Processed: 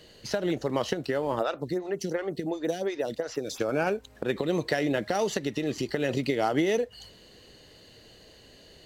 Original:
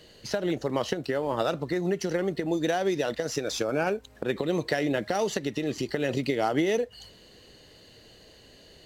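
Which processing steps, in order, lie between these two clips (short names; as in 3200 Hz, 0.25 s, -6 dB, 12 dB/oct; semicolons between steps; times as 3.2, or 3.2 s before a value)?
1.39–3.6 photocell phaser 2.8 Hz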